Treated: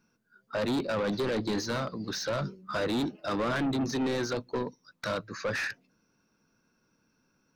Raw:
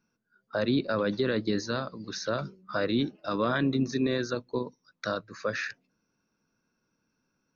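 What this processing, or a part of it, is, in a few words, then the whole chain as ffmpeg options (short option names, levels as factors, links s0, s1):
saturation between pre-emphasis and de-emphasis: -af "highshelf=f=3500:g=8,asoftclip=type=tanh:threshold=0.0282,highshelf=f=3500:g=-8,volume=1.88"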